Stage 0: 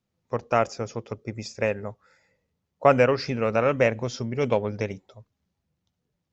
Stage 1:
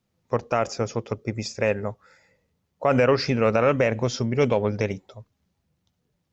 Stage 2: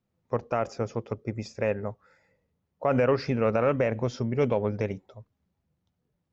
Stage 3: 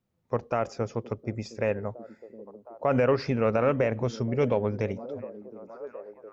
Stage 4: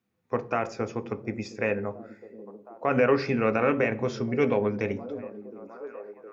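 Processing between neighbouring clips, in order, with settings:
limiter -14.5 dBFS, peak gain reduction 10.5 dB; gain +5 dB
high shelf 2900 Hz -11 dB; gain -3.5 dB
delay with a stepping band-pass 0.714 s, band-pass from 280 Hz, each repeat 0.7 oct, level -12 dB
reverb RT60 0.50 s, pre-delay 3 ms, DRR 9 dB

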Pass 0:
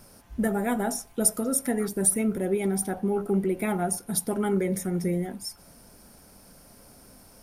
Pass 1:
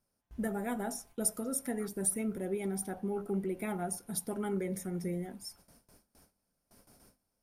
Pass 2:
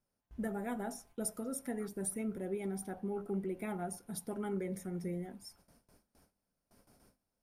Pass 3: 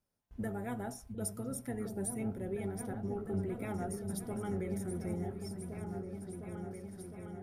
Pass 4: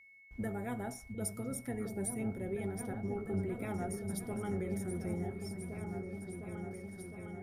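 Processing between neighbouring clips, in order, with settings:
gate with hold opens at -40 dBFS; gain -9 dB
high shelf 4300 Hz -5.5 dB; gain -3 dB
octaver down 1 oct, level -5 dB; repeats that get brighter 0.708 s, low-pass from 200 Hz, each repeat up 2 oct, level -3 dB; gain -1 dB
whine 2200 Hz -57 dBFS

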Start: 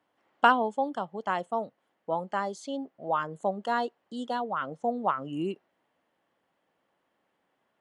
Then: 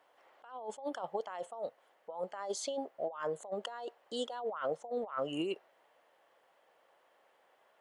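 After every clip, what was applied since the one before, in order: resonant low shelf 350 Hz -12.5 dB, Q 1.5; negative-ratio compressor -38 dBFS, ratio -1; gain -2 dB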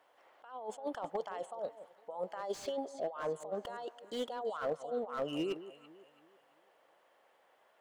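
echo with dull and thin repeats by turns 0.167 s, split 1000 Hz, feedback 58%, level -13 dB; slew limiter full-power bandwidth 22 Hz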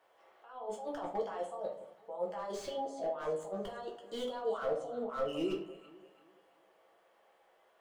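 shoebox room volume 35 m³, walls mixed, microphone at 0.73 m; gain -4 dB

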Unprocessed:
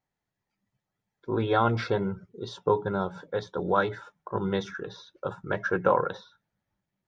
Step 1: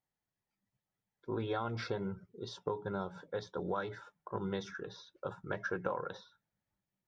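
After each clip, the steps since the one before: dynamic EQ 5200 Hz, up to +5 dB, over -56 dBFS, Q 2.7; compressor 6:1, threshold -25 dBFS, peak gain reduction 8.5 dB; gain -7 dB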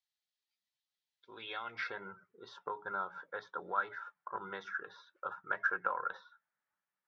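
band-pass sweep 3900 Hz -> 1400 Hz, 1.15–2.1; gain +8.5 dB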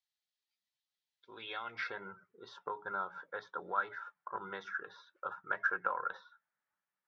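nothing audible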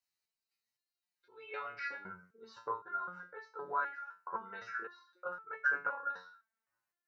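Butterworth band-stop 3400 Hz, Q 4.9; stepped resonator 3.9 Hz 91–440 Hz; gain +11.5 dB

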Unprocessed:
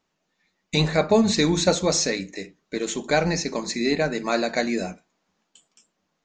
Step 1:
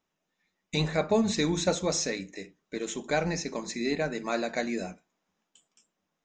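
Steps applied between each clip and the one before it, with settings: notch 4400 Hz, Q 8.2; gain -6.5 dB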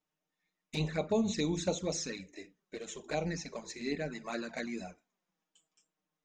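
envelope flanger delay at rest 6.6 ms, full sweep at -23 dBFS; gain -4.5 dB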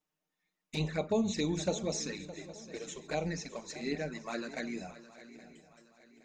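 swung echo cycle 0.819 s, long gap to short 3:1, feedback 37%, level -15.5 dB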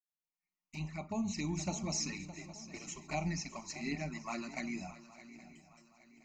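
opening faded in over 2.00 s; fixed phaser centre 2400 Hz, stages 8; gain +2.5 dB

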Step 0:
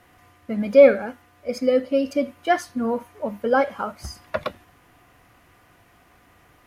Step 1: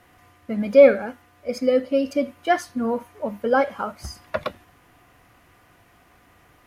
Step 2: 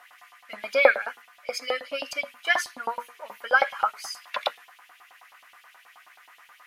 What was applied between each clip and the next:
nothing audible
notches 60/120/180/240/300/360/420/480 Hz; LFO high-pass saw up 9.4 Hz 780–3700 Hz; gain +2.5 dB

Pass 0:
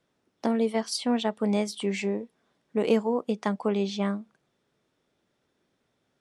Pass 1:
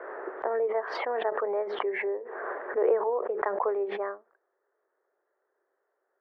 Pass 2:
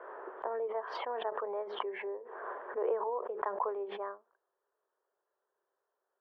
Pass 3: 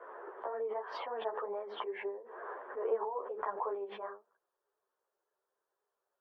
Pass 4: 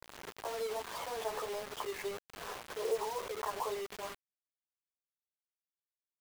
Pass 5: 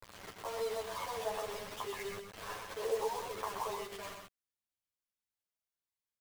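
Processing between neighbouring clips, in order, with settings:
Chebyshev band-pass 380–1800 Hz, order 4; backwards sustainer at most 32 dB/s
thirty-one-band EQ 315 Hz -4 dB, 1000 Hz +7 dB, 2000 Hz -6 dB, 3150 Hz +8 dB; gain -8 dB
ensemble effect; gain +1 dB
bit-crush 7-bit; gain -1 dB
chorus voices 6, 0.33 Hz, delay 10 ms, depth 1 ms; echo 0.126 s -5.5 dB; gain +1.5 dB

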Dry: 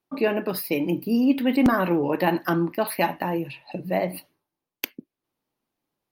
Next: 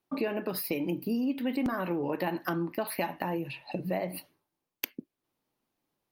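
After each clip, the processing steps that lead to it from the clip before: compressor 4:1, threshold -29 dBFS, peak gain reduction 12.5 dB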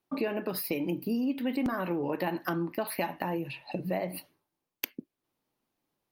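nothing audible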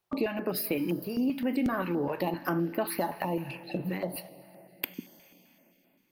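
plate-style reverb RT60 3.7 s, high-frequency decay 0.75×, DRR 14 dB; in parallel at -11 dB: hard clip -24 dBFS, distortion -18 dB; on the sum: stepped notch 7.7 Hz 270–5900 Hz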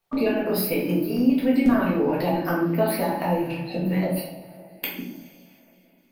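shoebox room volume 130 m³, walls mixed, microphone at 1.7 m

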